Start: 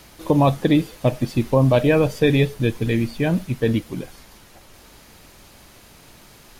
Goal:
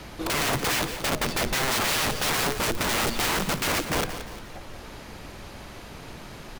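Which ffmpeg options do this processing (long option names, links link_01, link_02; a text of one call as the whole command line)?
ffmpeg -i in.wav -filter_complex "[0:a]lowpass=frequency=2700:poles=1,acrossover=split=560[link_01][link_02];[link_01]alimiter=limit=-17dB:level=0:latency=1:release=49[link_03];[link_02]acompressor=threshold=-34dB:ratio=6[link_04];[link_03][link_04]amix=inputs=2:normalize=0,aeval=exprs='(mod(25.1*val(0)+1,2)-1)/25.1':channel_layout=same,aecho=1:1:175|350|525|700:0.282|0.11|0.0429|0.0167,volume=7.5dB" out.wav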